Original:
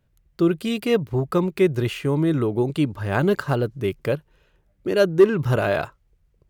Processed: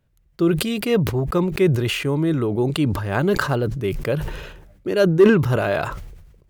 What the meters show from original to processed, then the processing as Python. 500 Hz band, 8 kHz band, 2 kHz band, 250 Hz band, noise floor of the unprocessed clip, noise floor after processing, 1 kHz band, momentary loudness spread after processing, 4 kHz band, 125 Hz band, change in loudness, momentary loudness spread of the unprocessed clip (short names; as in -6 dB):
+1.0 dB, n/a, +3.0 dB, +2.0 dB, -65 dBFS, -59 dBFS, +2.0 dB, 11 LU, +4.5 dB, +3.0 dB, +1.5 dB, 9 LU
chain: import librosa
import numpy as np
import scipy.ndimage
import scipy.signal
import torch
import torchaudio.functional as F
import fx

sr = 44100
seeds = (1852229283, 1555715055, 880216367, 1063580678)

y = fx.sustainer(x, sr, db_per_s=50.0)